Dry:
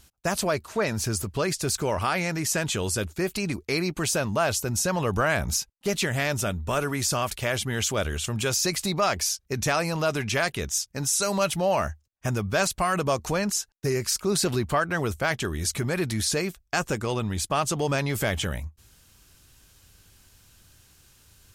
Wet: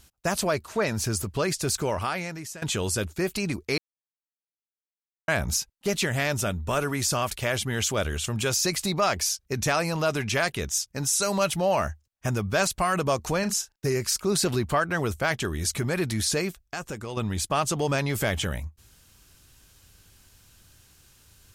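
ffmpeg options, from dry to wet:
-filter_complex "[0:a]asettb=1/sr,asplit=3[a][b][c];[a]atrim=end=13.394[d];[b]atrim=start=13.39:end=13.85,asetpts=PTS-STARTPTS,afade=t=in:d=0.004:c=qsin,afade=t=out:st=0.456:d=0.004:c=qsin,asplit=2[e][f];[f]adelay=37,volume=-11dB[g];[e][g]amix=inputs=2:normalize=0,atrim=end_sample=20286[h];[c]atrim=start=13.846[i];[d][h]acrossfade=d=0.004:c1=hsin:c2=qsin[j];[j][i]acrossfade=d=0.004:c1=qsin:c2=hsin,asettb=1/sr,asplit=3[k][l][m];[k]atrim=end=16.594[n];[l]atrim=start=16.59:end=17.17,asetpts=PTS-STARTPTS,afade=t=in:d=0.004:c=qsin,afade=t=out:st=0.576:d=0.004:c=qsin,acompressor=threshold=-43dB:ratio=1.5:attack=3.2:release=140:knee=1:detection=peak[o];[m]atrim=start=17.166[p];[n][o]acrossfade=d=0.004:c1=hsin:c2=qsin[q];[q][p]acrossfade=d=0.004:c1=qsin:c2=hsin,asplit=4[r][s][t][u];[r]atrim=end=2.62,asetpts=PTS-STARTPTS,afade=t=out:st=1.8:d=0.82:silence=0.11885[v];[s]atrim=start=2.62:end=3.78,asetpts=PTS-STARTPTS,afade=t=in:d=0.004:c=hsin:silence=0.11885,afade=t=out:st=1.156:d=0.004:c=hsin[w];[t]atrim=start=3.78:end=5.28,asetpts=PTS-STARTPTS,volume=0[x];[u]atrim=start=5.28,asetpts=PTS-STARTPTS,afade=t=in:d=0.004:c=hsin[y];[v][w][x][y]concat=n=4:v=0:a=1"

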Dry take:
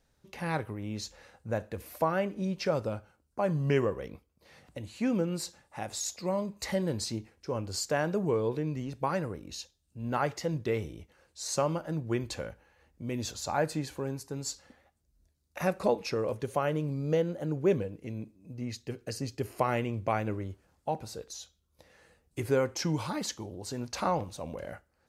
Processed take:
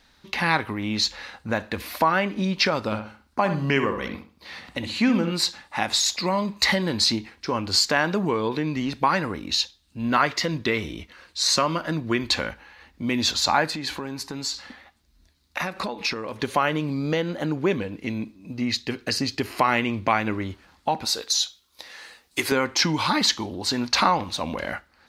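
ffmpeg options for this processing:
-filter_complex "[0:a]asettb=1/sr,asplit=3[a][b][c];[a]atrim=end=2.834[d];[b]atrim=start=2.83:end=5.32,asetpts=PTS-STARTPTS,afade=t=in:d=0.004:c=qsin,afade=t=out:st=2.486:d=0.004:c=qsin,asplit=2[e][f];[f]adelay=65,lowpass=f=2.6k:p=1,volume=-8dB,asplit=2[g][h];[h]adelay=65,lowpass=f=2.6k:p=1,volume=0.31,asplit=2[i][j];[j]adelay=65,lowpass=f=2.6k:p=1,volume=0.31,asplit=2[k][l];[l]adelay=65,lowpass=f=2.6k:p=1,volume=0.31[m];[e][g][i][k][m]amix=inputs=5:normalize=0,atrim=end_sample=109809[n];[c]atrim=start=5.316[o];[d][n]acrossfade=d=0.004:c1=hsin:c2=qsin[p];[p][o]acrossfade=d=0.004:c1=qsin:c2=hsin,asettb=1/sr,asplit=3[q][r][s];[q]atrim=end=10.074[t];[r]atrim=start=10.07:end=12.27,asetpts=PTS-STARTPTS,afade=t=in:d=0.004:c=qsin,afade=t=out:st=2.196:d=0.004:c=qsin,asuperstop=centerf=830:order=4:qfactor=8[u];[s]atrim=start=12.266[v];[t][u]acrossfade=d=0.004:c1=hsin:c2=qsin[w];[w][v]acrossfade=d=0.004:c1=qsin:c2=hsin,asettb=1/sr,asplit=3[x][y][z];[x]atrim=end=13.704[aa];[y]atrim=start=13.7:end=16.4,asetpts=PTS-STARTPTS,afade=t=in:d=0.004:c=qsin,afade=t=out:st=2.696:d=0.004:c=qsin,acompressor=threshold=-39dB:ratio=4:attack=3.2:release=140:knee=1:detection=peak[ab];[z]atrim=start=16.396[ac];[aa][ab]acrossfade=d=0.004:c1=hsin:c2=qsin[ad];[ad][ac]acrossfade=d=0.004:c1=qsin:c2=hsin,asettb=1/sr,asplit=3[ae][af][ag];[ae]atrim=end=21.054[ah];[af]atrim=start=21.05:end=22.52,asetpts=PTS-STARTPTS,afade=t=in:d=0.004:c=qsin,afade=t=out:st=1.466:d=0.004:c=qsin,bass=f=250:g=-12,treble=f=4k:g=8[ai];[ag]atrim=start=22.516[aj];[ah][ai]acrossfade=d=0.004:c1=hsin:c2=qsin[ak];[ak][aj]acrossfade=d=0.004:c1=qsin:c2=hsin,acompressor=threshold=-33dB:ratio=2,equalizer=f=125:t=o:w=1:g=-6,equalizer=f=250:t=o:w=1:g=6,equalizer=f=500:t=o:w=1:g=-5,equalizer=f=1k:t=o:w=1:g=7,equalizer=f=2k:t=o:w=1:g=7,equalizer=f=4k:t=o:w=1:g=12,equalizer=f=8k:t=o:w=1:g=-3,volume=9dB"

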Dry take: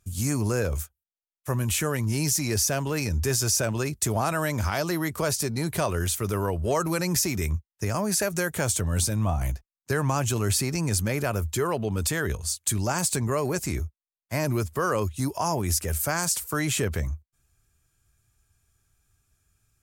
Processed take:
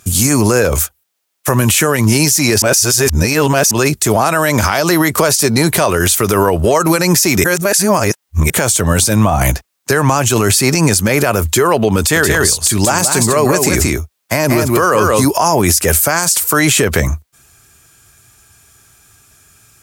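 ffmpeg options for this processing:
-filter_complex "[0:a]asettb=1/sr,asplit=3[a][b][c];[a]atrim=end=11.984[d];[b]atrim=start=11.98:end=15.26,asetpts=PTS-STARTPTS,afade=t=in:d=0.004:c=qsin,afade=t=out:st=3.276:d=0.004:c=qsin,aecho=1:1:177:0.473,atrim=end_sample=144648[e];[c]atrim=start=15.256[f];[d][e]acrossfade=d=0.004:c1=hsin:c2=qsin[g];[g][f]acrossfade=d=0.004:c1=qsin:c2=hsin,asplit=5[h][i][j][k][l];[h]atrim=end=2.622[m];[i]atrim=start=2.618:end=3.712,asetpts=PTS-STARTPTS,areverse[n];[j]atrim=start=3.708:end=7.442[o];[k]atrim=start=7.438:end=8.502,asetpts=PTS-STARTPTS,areverse[p];[l]atrim=start=8.498[q];[m][n]acrossfade=d=0.004:c1=hsin:c2=hsin[r];[r][o]acrossfade=d=0.004:c1=hsin:c2=hsin[s];[s][p]acrossfade=d=0.004:c1=hsin:c2=hsin[t];[t][q]acrossfade=d=0.004:c1=hsin:c2=hsin,highpass=f=280:p=1,acompressor=threshold=-31dB:ratio=6,alimiter=level_in=26.5dB:limit=-1dB:release=50:level=0:latency=1,volume=-1dB"

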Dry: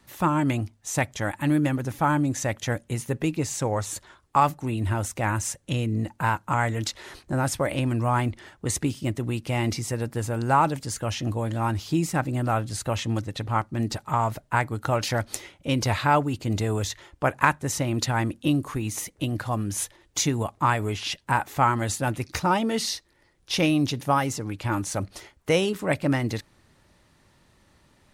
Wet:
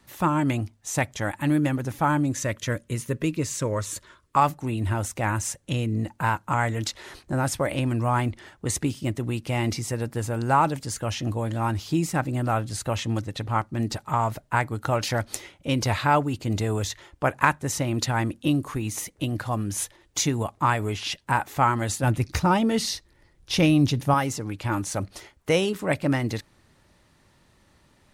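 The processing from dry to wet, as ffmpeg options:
-filter_complex "[0:a]asettb=1/sr,asplit=3[a][b][c];[a]atrim=end=2.334[d];[b]atrim=start=2.33:end=4.37,asetpts=PTS-STARTPTS,afade=t=in:d=0.004:c=qsin,afade=t=out:st=2.036:d=0.004:c=qsin,asuperstop=centerf=780:order=4:qfactor=3.1[e];[c]atrim=start=4.366[f];[d][e]acrossfade=d=0.004:c1=hsin:c2=qsin[g];[g][f]acrossfade=d=0.004:c1=qsin:c2=hsin,asettb=1/sr,asplit=3[h][i][j];[h]atrim=end=22.034[k];[i]atrim=start=22.03:end=24.14,asetpts=PTS-STARTPTS,afade=t=in:d=0.004:c=qsin,afade=t=out:st=2.106:d=0.004:c=qsin,lowshelf=f=160:g=11[l];[j]atrim=start=24.136[m];[k][l]acrossfade=d=0.004:c1=hsin:c2=qsin[n];[n][m]acrossfade=d=0.004:c1=qsin:c2=hsin"

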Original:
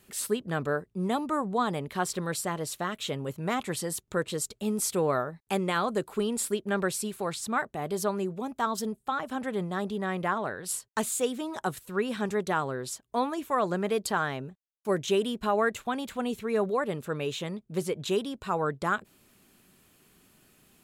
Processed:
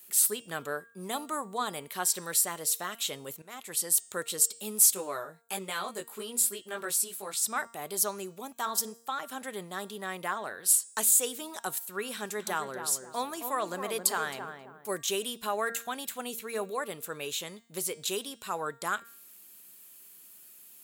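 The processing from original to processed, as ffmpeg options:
-filter_complex "[0:a]asettb=1/sr,asplit=3[a][b][c];[a]atrim=end=4.944[d];[b]atrim=start=4.94:end=7.37,asetpts=PTS-STARTPTS,afade=t=in:d=0.004:c=qsin,afade=t=out:st=2.426:d=0.004:c=qsin,flanger=delay=15.5:depth=3.2:speed=1.3[e];[c]atrim=start=7.366[f];[d][e]acrossfade=d=0.004:c1=hsin:c2=qsin[g];[g][f]acrossfade=d=0.004:c1=qsin:c2=hsin,asettb=1/sr,asplit=3[h][i][j];[h]atrim=end=12.124[k];[i]atrim=start=12.12:end=14.89,asetpts=PTS-STARTPTS,afade=t=in:d=0.004:c=qsin,afade=t=out:st=2.766:d=0.004:c=qsin,asplit=2[l][m];[m]adelay=267,lowpass=f=1.1k:p=1,volume=-6dB,asplit=2[n][o];[o]adelay=267,lowpass=f=1.1k:p=1,volume=0.36,asplit=2[p][q];[q]adelay=267,lowpass=f=1.1k:p=1,volume=0.36,asplit=2[r][s];[s]adelay=267,lowpass=f=1.1k:p=1,volume=0.36[t];[l][n][p][r][t]amix=inputs=5:normalize=0,atrim=end_sample=122157[u];[j]atrim=start=14.886[v];[k][u]acrossfade=d=0.004:c1=hsin:c2=qsin[w];[w][v]acrossfade=d=0.004:c1=qsin:c2=hsin,asplit=2[x][y];[x]atrim=end=3.42,asetpts=PTS-STARTPTS,afade=t=out:st=3.416:d=0.004:c=hsin:silence=0.0944061[z];[y]atrim=start=3.42,asetpts=PTS-STARTPTS,afade=t=in:d=0.53:silence=0.0944061[aa];[z][aa]concat=n=2:v=0:a=1,aemphasis=mode=production:type=riaa,bandreject=f=231.4:t=h:w=4,bandreject=f=462.8:t=h:w=4,bandreject=f=694.2:t=h:w=4,bandreject=f=925.6:t=h:w=4,bandreject=f=1.157k:t=h:w=4,bandreject=f=1.3884k:t=h:w=4,bandreject=f=1.6198k:t=h:w=4,bandreject=f=1.8512k:t=h:w=4,bandreject=f=2.0826k:t=h:w=4,bandreject=f=2.314k:t=h:w=4,bandreject=f=2.5454k:t=h:w=4,bandreject=f=2.7768k:t=h:w=4,bandreject=f=3.0082k:t=h:w=4,bandreject=f=3.2396k:t=h:w=4,bandreject=f=3.471k:t=h:w=4,bandreject=f=3.7024k:t=h:w=4,bandreject=f=3.9338k:t=h:w=4,bandreject=f=4.1652k:t=h:w=4,bandreject=f=4.3966k:t=h:w=4,bandreject=f=4.628k:t=h:w=4,bandreject=f=4.8594k:t=h:w=4,bandreject=f=5.0908k:t=h:w=4,bandreject=f=5.3222k:t=h:w=4,bandreject=f=5.5536k:t=h:w=4,bandreject=f=5.785k:t=h:w=4,bandreject=f=6.0164k:t=h:w=4,bandreject=f=6.2478k:t=h:w=4,bandreject=f=6.4792k:t=h:w=4,bandreject=f=6.7106k:t=h:w=4,bandreject=f=6.942k:t=h:w=4,bandreject=f=7.1734k:t=h:w=4,bandreject=f=7.4048k:t=h:w=4,bandreject=f=7.6362k:t=h:w=4,bandreject=f=7.8676k:t=h:w=4,bandreject=f=8.099k:t=h:w=4,bandreject=f=8.3304k:t=h:w=4,bandreject=f=8.5618k:t=h:w=4,bandreject=f=8.7932k:t=h:w=4,bandreject=f=9.0246k:t=h:w=4,bandreject=f=9.256k:t=h:w=4,volume=-4dB"

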